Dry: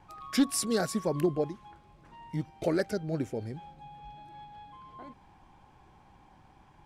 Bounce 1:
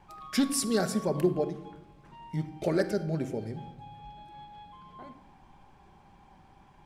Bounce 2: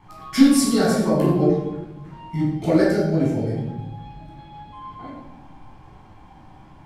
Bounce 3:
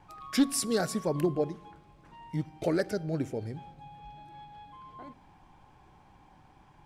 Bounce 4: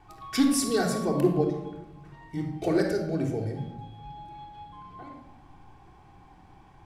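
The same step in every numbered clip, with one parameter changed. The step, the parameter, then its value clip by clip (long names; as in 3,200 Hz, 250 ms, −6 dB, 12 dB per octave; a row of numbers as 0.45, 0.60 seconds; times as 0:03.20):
rectangular room, microphone at: 1.2, 11, 0.38, 3.5 metres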